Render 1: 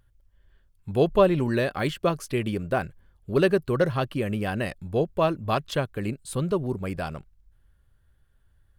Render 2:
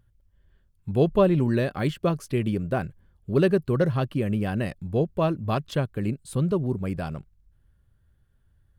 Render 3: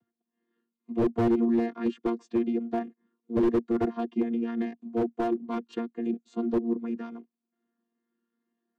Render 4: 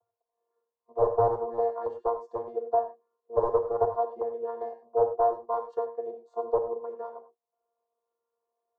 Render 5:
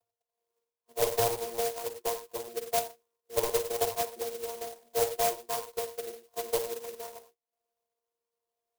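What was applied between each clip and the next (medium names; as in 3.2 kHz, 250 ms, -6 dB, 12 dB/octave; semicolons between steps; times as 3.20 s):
peaking EQ 150 Hz +8 dB 2.7 oct; trim -4 dB
vocoder on a held chord bare fifth, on A#3; slew-rate limiter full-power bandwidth 42 Hz; trim -1.5 dB
FFT filter 110 Hz 0 dB, 170 Hz -28 dB, 310 Hz -26 dB, 450 Hz +10 dB, 1 kHz +11 dB, 2.5 kHz -29 dB, 4.4 kHz -14 dB; gated-style reverb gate 130 ms flat, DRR 7 dB; trim -2 dB
sampling jitter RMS 0.14 ms; trim -4 dB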